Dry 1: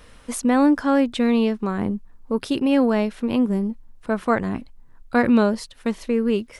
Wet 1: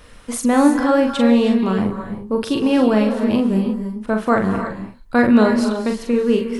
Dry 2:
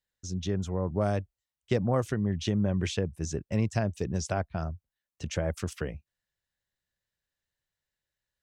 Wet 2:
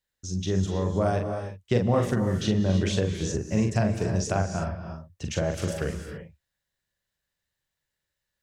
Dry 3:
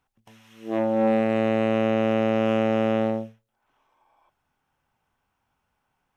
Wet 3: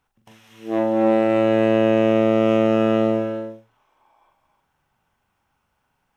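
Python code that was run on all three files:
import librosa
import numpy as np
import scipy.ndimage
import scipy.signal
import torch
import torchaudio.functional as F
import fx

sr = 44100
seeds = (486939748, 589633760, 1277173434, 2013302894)

y = fx.doubler(x, sr, ms=42.0, db=-5.0)
y = fx.dynamic_eq(y, sr, hz=2200.0, q=4.0, threshold_db=-46.0, ratio=4.0, max_db=-3)
y = fx.rev_gated(y, sr, seeds[0], gate_ms=350, shape='rising', drr_db=6.5)
y = y * 10.0 ** (2.5 / 20.0)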